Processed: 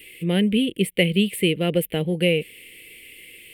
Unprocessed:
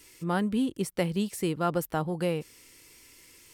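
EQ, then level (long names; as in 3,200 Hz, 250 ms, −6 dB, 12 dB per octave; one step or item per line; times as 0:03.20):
drawn EQ curve 130 Hz 0 dB, 190 Hz +7 dB, 270 Hz +1 dB, 480 Hz +8 dB, 910 Hz −14 dB, 1,300 Hz −15 dB, 2,100 Hz +13 dB, 3,000 Hz +15 dB, 6,000 Hz −19 dB, 9,000 Hz +5 dB
+3.0 dB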